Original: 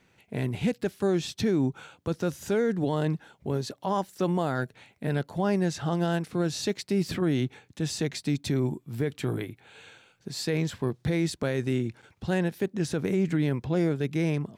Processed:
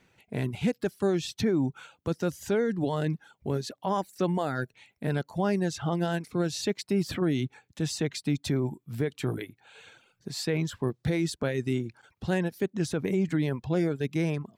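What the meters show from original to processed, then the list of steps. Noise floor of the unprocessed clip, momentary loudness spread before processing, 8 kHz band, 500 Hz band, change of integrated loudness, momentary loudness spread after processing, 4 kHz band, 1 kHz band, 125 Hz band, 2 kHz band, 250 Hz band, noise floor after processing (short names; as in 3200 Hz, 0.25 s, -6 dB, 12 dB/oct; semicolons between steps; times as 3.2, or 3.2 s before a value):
-66 dBFS, 8 LU, -0.5 dB, -1.0 dB, -1.0 dB, 7 LU, -0.5 dB, -0.5 dB, -1.5 dB, -0.5 dB, -1.0 dB, -76 dBFS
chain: reverb removal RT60 0.66 s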